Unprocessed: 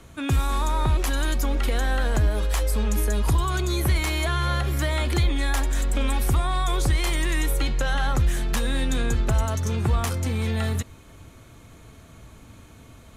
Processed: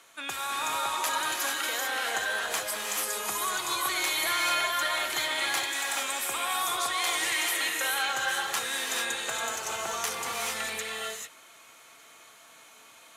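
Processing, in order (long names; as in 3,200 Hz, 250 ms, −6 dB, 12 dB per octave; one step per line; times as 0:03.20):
Bessel high-pass filter 1,100 Hz, order 2
reverb whose tail is shaped and stops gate 470 ms rising, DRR −1.5 dB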